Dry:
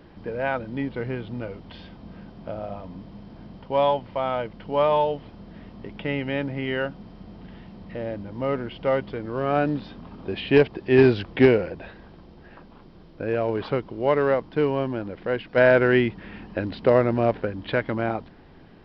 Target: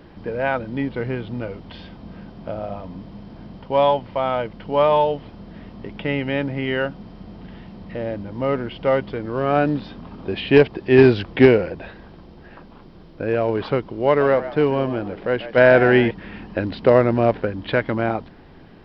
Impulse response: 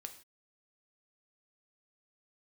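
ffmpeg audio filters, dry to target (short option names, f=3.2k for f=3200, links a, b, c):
-filter_complex "[0:a]asettb=1/sr,asplit=3[a][b][c];[a]atrim=end=14.064[d];[b]atrim=start=14.06:end=16.11,asetpts=PTS-STARTPTS,afade=t=in:d=0.004:c=qsin,afade=t=out:st=2.046:d=0.004:c=qsin,asplit=4[e][f][g][h];[f]adelay=140,afreqshift=94,volume=-13.5dB[i];[g]adelay=280,afreqshift=188,volume=-23.1dB[j];[h]adelay=420,afreqshift=282,volume=-32.8dB[k];[e][i][j][k]amix=inputs=4:normalize=0,atrim=end_sample=90405[l];[c]atrim=start=16.106[m];[d][l]acrossfade=d=0.004:c1=hsin:c2=qsin[n];[n][m]acrossfade=d=0.004:c1=qsin:c2=hsin,volume=4dB"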